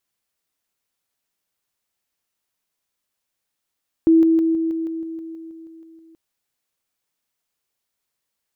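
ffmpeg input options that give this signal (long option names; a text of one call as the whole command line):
ffmpeg -f lavfi -i "aevalsrc='pow(10,(-9.5-3*floor(t/0.16))/20)*sin(2*PI*326*t)':duration=2.08:sample_rate=44100" out.wav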